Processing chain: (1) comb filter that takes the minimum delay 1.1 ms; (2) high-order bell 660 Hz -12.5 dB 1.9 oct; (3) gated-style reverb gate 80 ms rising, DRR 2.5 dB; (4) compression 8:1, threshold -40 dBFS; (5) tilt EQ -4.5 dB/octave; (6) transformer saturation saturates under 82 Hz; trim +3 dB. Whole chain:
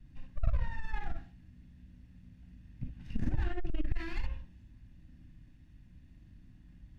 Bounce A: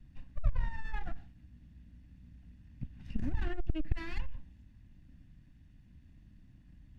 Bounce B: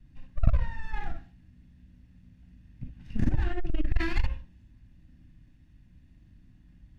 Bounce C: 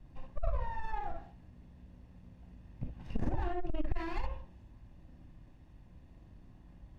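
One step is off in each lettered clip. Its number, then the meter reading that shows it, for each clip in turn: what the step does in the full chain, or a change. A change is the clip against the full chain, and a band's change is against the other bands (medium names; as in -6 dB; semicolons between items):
3, loudness change -1.0 LU; 4, mean gain reduction 3.5 dB; 2, 1 kHz band +10.5 dB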